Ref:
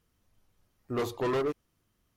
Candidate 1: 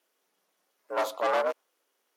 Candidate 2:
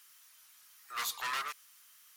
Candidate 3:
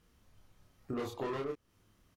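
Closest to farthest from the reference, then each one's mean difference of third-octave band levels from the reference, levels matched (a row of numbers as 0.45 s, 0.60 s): 3, 1, 2; 3.5 dB, 8.0 dB, 16.0 dB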